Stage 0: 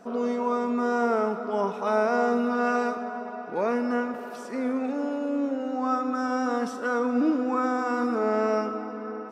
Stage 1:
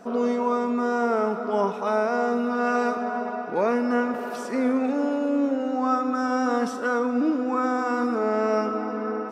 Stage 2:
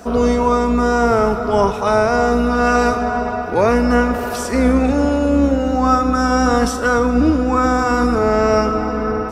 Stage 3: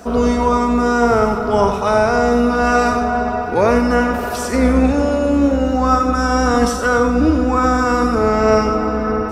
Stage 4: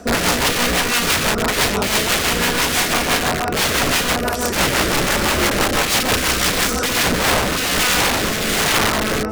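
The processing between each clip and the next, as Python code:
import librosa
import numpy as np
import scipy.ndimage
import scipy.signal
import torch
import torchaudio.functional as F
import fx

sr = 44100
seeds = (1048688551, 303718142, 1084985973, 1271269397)

y1 = fx.rider(x, sr, range_db=4, speed_s=0.5)
y1 = F.gain(torch.from_numpy(y1), 2.5).numpy()
y2 = fx.octave_divider(y1, sr, octaves=2, level_db=-4.0)
y2 = fx.high_shelf(y2, sr, hz=4000.0, db=10.0)
y2 = F.gain(torch.from_numpy(y2), 8.0).numpy()
y3 = y2 + 10.0 ** (-8.0 / 20.0) * np.pad(y2, (int(92 * sr / 1000.0), 0))[:len(y2)]
y4 = (np.mod(10.0 ** (14.0 / 20.0) * y3 + 1.0, 2.0) - 1.0) / 10.0 ** (14.0 / 20.0)
y4 = fx.rotary_switch(y4, sr, hz=6.0, then_hz=1.2, switch_at_s=6.63)
y4 = F.gain(torch.from_numpy(y4), 4.0).numpy()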